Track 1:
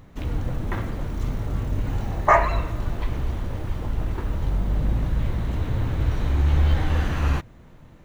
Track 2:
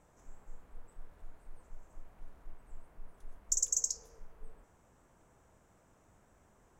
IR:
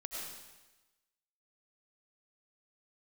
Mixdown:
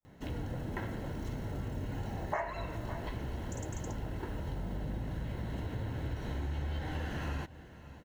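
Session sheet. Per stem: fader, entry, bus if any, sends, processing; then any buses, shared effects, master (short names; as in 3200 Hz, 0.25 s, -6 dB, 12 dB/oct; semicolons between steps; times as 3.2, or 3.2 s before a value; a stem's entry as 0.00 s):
-4.0 dB, 0.05 s, no send, echo send -22 dB, notch comb 1200 Hz
-18.5 dB, 0.00 s, no send, no echo send, expander -60 dBFS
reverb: off
echo: echo 0.553 s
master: compressor 4:1, threshold -34 dBFS, peak gain reduction 14 dB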